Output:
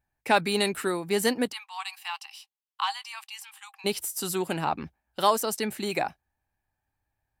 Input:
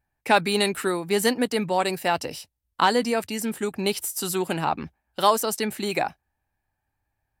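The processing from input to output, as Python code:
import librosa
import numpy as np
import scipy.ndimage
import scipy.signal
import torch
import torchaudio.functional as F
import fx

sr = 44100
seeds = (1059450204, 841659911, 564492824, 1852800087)

y = fx.cheby_ripple_highpass(x, sr, hz=770.0, ripple_db=9, at=(1.51, 3.84), fade=0.02)
y = F.gain(torch.from_numpy(y), -3.0).numpy()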